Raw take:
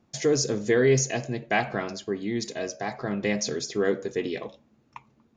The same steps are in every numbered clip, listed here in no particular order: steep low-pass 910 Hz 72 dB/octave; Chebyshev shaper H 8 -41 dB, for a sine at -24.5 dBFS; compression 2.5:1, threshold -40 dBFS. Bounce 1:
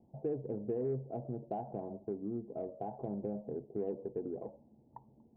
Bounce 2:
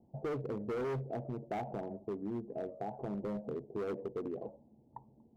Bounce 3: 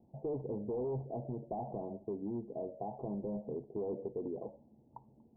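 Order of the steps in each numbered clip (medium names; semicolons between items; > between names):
compression > steep low-pass > Chebyshev shaper; steep low-pass > Chebyshev shaper > compression; Chebyshev shaper > compression > steep low-pass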